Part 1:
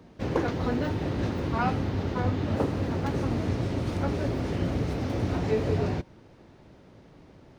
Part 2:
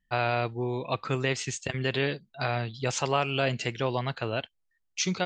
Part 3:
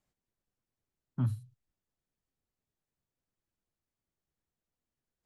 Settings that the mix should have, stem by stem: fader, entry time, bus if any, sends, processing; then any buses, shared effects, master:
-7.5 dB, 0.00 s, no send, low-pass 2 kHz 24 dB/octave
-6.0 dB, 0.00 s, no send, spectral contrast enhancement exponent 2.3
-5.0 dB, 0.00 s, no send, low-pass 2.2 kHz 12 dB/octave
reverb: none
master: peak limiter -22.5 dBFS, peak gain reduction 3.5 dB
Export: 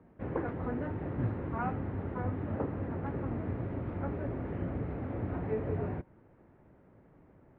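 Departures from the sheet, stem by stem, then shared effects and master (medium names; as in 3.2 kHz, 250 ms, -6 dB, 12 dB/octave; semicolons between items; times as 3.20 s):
stem 2: muted; master: missing peak limiter -22.5 dBFS, peak gain reduction 3.5 dB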